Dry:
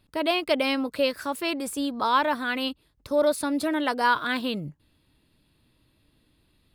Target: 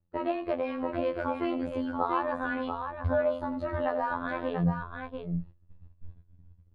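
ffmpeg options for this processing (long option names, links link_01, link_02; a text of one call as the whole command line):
ffmpeg -i in.wav -filter_complex "[0:a]afftfilt=real='re*pow(10,7/40*sin(2*PI*(1.7*log(max(b,1)*sr/1024/100)/log(2)-(-0.57)*(pts-256)/sr)))':imag='im*pow(10,7/40*sin(2*PI*(1.7*log(max(b,1)*sr/1024/100)/log(2)-(-0.57)*(pts-256)/sr)))':win_size=1024:overlap=0.75,asubboost=boost=6:cutoff=67,acompressor=threshold=-30dB:ratio=5,lowshelf=frequency=170:width_type=q:width=3:gain=7,asplit=2[link_01][link_02];[link_02]aecho=0:1:90|687:0.211|0.531[link_03];[link_01][link_03]amix=inputs=2:normalize=0,flanger=delay=3.6:depth=3.3:regen=-75:speed=0.31:shape=triangular,lowpass=1100,acontrast=41,agate=range=-20dB:threshold=-43dB:ratio=16:detection=peak,asplit=2[link_04][link_05];[link_05]adelay=21,volume=-9.5dB[link_06];[link_04][link_06]amix=inputs=2:normalize=0,afftfilt=real='hypot(re,im)*cos(PI*b)':imag='0':win_size=2048:overlap=0.75,volume=7dB" out.wav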